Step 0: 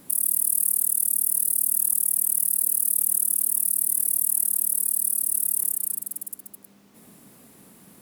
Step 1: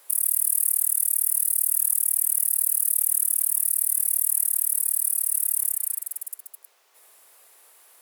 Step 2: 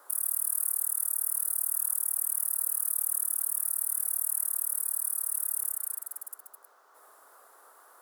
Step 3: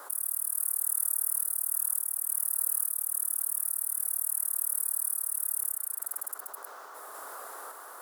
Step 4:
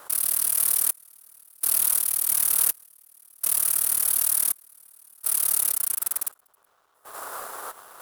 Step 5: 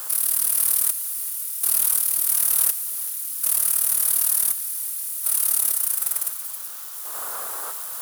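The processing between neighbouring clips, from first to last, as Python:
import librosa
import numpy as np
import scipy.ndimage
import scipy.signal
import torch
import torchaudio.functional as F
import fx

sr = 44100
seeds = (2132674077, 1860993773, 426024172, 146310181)

y1 = fx.dynamic_eq(x, sr, hz=2000.0, q=1.8, threshold_db=-56.0, ratio=4.0, max_db=8)
y1 = scipy.signal.sosfilt(scipy.signal.bessel(8, 790.0, 'highpass', norm='mag', fs=sr, output='sos'), y1)
y2 = fx.high_shelf_res(y1, sr, hz=1800.0, db=-10.0, q=3.0)
y2 = F.gain(torch.from_numpy(y2), 3.0).numpy()
y3 = fx.tremolo_random(y2, sr, seeds[0], hz=3.5, depth_pct=55)
y3 = fx.env_flatten(y3, sr, amount_pct=50)
y4 = fx.leveller(y3, sr, passes=5)
y4 = fx.step_gate(y4, sr, bpm=83, pattern='xxxxx....x', floor_db=-12.0, edge_ms=4.5)
y4 = fx.upward_expand(y4, sr, threshold_db=-34.0, expansion=2.5)
y5 = y4 + 0.5 * 10.0 ** (-26.5 / 20.0) * np.diff(np.sign(y4), prepend=np.sign(y4[:1]))
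y5 = y5 + 10.0 ** (-22.5 / 20.0) * np.pad(y5, (int(450 * sr / 1000.0), 0))[:len(y5)]
y5 = fx.echo_crushed(y5, sr, ms=383, feedback_pct=55, bits=7, wet_db=-14)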